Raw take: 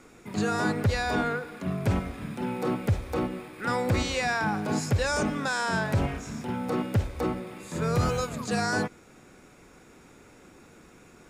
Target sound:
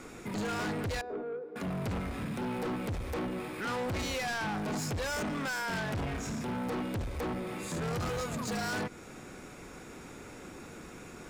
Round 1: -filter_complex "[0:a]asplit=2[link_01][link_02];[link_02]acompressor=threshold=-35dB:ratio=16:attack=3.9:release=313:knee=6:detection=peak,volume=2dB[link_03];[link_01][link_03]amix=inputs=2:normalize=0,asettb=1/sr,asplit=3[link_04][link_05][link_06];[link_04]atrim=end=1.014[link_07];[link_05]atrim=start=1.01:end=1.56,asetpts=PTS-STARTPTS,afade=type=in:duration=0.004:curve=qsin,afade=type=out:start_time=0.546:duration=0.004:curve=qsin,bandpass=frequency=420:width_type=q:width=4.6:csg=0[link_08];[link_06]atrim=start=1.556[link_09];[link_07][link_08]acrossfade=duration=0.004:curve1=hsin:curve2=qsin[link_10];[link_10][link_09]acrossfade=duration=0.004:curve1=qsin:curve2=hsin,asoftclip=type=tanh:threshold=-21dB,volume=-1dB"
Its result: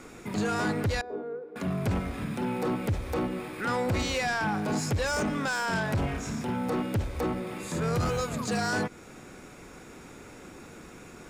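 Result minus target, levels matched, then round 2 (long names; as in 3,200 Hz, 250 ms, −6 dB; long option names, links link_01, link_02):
soft clipping: distortion −8 dB
-filter_complex "[0:a]asplit=2[link_01][link_02];[link_02]acompressor=threshold=-35dB:ratio=16:attack=3.9:release=313:knee=6:detection=peak,volume=2dB[link_03];[link_01][link_03]amix=inputs=2:normalize=0,asettb=1/sr,asplit=3[link_04][link_05][link_06];[link_04]atrim=end=1.014[link_07];[link_05]atrim=start=1.01:end=1.56,asetpts=PTS-STARTPTS,afade=type=in:duration=0.004:curve=qsin,afade=type=out:start_time=0.546:duration=0.004:curve=qsin,bandpass=frequency=420:width_type=q:width=4.6:csg=0[link_08];[link_06]atrim=start=1.556[link_09];[link_07][link_08]acrossfade=duration=0.004:curve1=hsin:curve2=qsin[link_10];[link_10][link_09]acrossfade=duration=0.004:curve1=qsin:curve2=hsin,asoftclip=type=tanh:threshold=-30.5dB,volume=-1dB"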